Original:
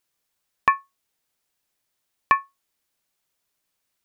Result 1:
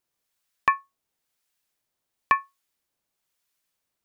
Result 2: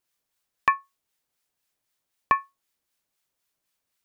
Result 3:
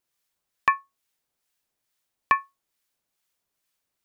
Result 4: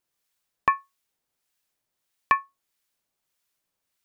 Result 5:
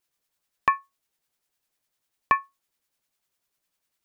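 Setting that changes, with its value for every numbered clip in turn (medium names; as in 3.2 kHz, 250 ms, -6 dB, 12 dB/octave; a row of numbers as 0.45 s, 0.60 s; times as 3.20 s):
harmonic tremolo, rate: 1 Hz, 3.9 Hz, 2.3 Hz, 1.6 Hz, 10 Hz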